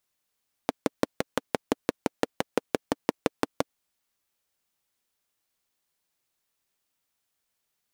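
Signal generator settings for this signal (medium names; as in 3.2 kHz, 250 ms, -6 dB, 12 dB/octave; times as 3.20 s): single-cylinder engine model, steady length 2.99 s, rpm 700, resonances 290/460 Hz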